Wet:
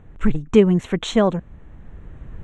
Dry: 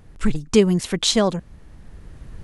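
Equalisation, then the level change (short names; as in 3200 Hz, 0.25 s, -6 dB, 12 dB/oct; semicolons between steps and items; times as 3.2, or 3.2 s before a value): running mean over 9 samples; +2.0 dB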